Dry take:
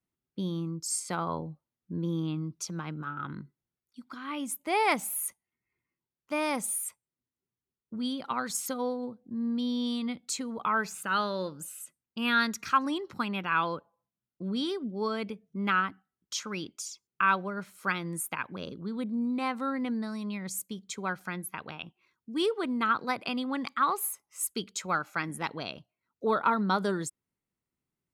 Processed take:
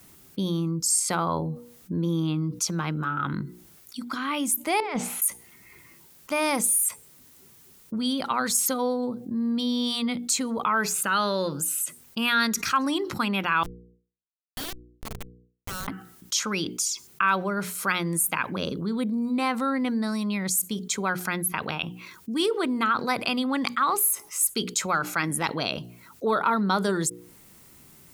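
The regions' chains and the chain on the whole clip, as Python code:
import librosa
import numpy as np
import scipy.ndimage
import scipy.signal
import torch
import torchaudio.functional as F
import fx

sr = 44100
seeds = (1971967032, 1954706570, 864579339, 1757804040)

y = fx.chain(x, sr, fx.over_compress(threshold_db=-32.0, ratio=-0.5),
    fx.air_absorb(metres=160.0), at=(4.8, 5.22))
y = fx.chain(y, sr, fx.differentiator(),
    fx.schmitt(flips_db=-41.0), at=(13.63, 15.88))
y = fx.high_shelf(y, sr, hz=6300.0, db=9.5)
y = fx.hum_notches(y, sr, base_hz=60, count=8)
y = fx.env_flatten(y, sr, amount_pct=50)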